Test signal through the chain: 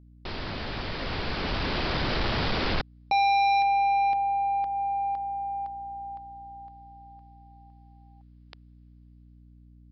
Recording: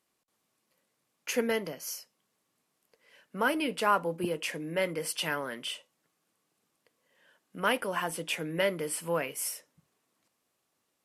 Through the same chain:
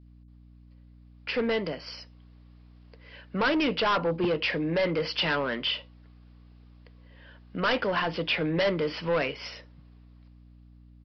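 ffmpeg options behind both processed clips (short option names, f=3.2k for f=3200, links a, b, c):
-af "adynamicequalizer=threshold=0.0158:dfrequency=900:dqfactor=0.75:tfrequency=900:tqfactor=0.75:attack=5:release=100:ratio=0.375:range=2.5:mode=cutabove:tftype=bell,dynaudnorm=f=450:g=7:m=11dB,aresample=11025,asoftclip=type=tanh:threshold=-21dB,aresample=44100,aeval=exprs='val(0)+0.00282*(sin(2*PI*60*n/s)+sin(2*PI*2*60*n/s)/2+sin(2*PI*3*60*n/s)/3+sin(2*PI*4*60*n/s)/4+sin(2*PI*5*60*n/s)/5)':c=same"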